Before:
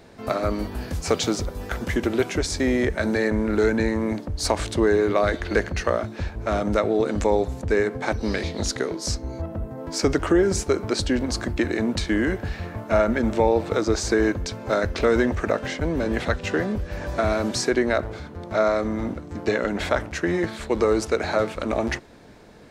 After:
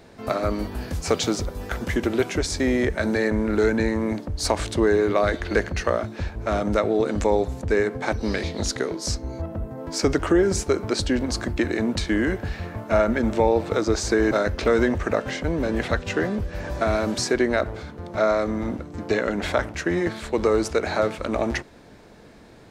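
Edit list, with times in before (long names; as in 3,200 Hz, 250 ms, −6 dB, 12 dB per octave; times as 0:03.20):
0:14.31–0:14.68: remove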